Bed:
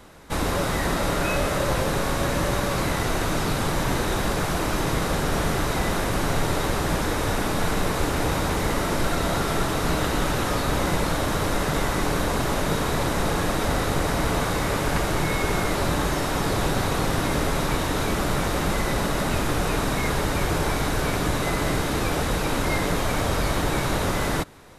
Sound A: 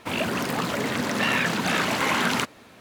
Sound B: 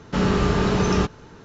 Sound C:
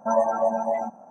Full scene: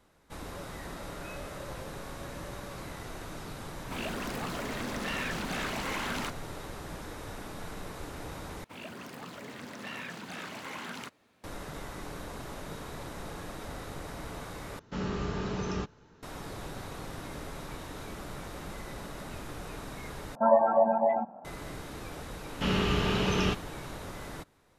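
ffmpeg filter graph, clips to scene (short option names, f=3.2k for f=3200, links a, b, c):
-filter_complex "[1:a]asplit=2[a][b];[2:a]asplit=2[c][d];[0:a]volume=-17.5dB[e];[a]asoftclip=type=tanh:threshold=-19.5dB[f];[3:a]aresample=8000,aresample=44100[g];[d]equalizer=f=2.9k:w=1.9:g=11.5[h];[e]asplit=4[i][j][k][l];[i]atrim=end=8.644[m];[b]atrim=end=2.8,asetpts=PTS-STARTPTS,volume=-17.5dB[n];[j]atrim=start=11.436:end=14.794[o];[c]atrim=end=1.44,asetpts=PTS-STARTPTS,volume=-13.5dB[p];[k]atrim=start=16.226:end=20.354[q];[g]atrim=end=1.1,asetpts=PTS-STARTPTS,volume=-0.5dB[r];[l]atrim=start=21.446[s];[f]atrim=end=2.8,asetpts=PTS-STARTPTS,volume=-9dB,afade=t=in:d=0.004:c=hsin,afade=t=out:st=2.796:d=0.004:c=hsin,adelay=169785S[t];[h]atrim=end=1.44,asetpts=PTS-STARTPTS,volume=-8.5dB,afade=t=in:d=0.004:c=hsin,afade=t=out:st=1.436:d=0.004:c=hsin,adelay=22480[u];[m][n]acrossfade=d=0.004:c1=hsin:c2=hsin[v];[v][o]acrossfade=d=0.004:c1=hsin:c2=hsin[w];[w][p]acrossfade=d=0.004:c1=hsin:c2=hsin[x];[x][q]acrossfade=d=0.004:c1=hsin:c2=hsin[y];[y][r]acrossfade=d=0.004:c1=hsin:c2=hsin[z];[z][s]acrossfade=d=0.004:c1=hsin:c2=hsin[aa];[aa][t][u]amix=inputs=3:normalize=0"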